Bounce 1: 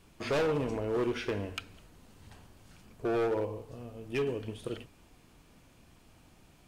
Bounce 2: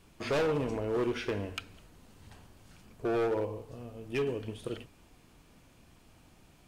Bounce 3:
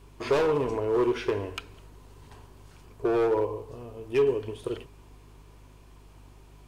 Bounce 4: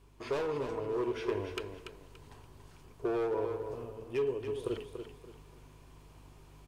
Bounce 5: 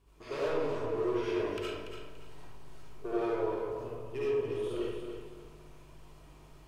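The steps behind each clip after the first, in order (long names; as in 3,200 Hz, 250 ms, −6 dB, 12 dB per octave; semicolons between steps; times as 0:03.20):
no processing that can be heard
mains hum 50 Hz, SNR 18 dB; thirty-one-band graphic EQ 200 Hz −9 dB, 400 Hz +10 dB, 1,000 Hz +9 dB; level +1.5 dB
speech leveller within 5 dB 0.5 s; repeating echo 287 ms, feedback 29%, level −8 dB; level −8 dB
convolution reverb RT60 0.95 s, pre-delay 30 ms, DRR −8.5 dB; level −7 dB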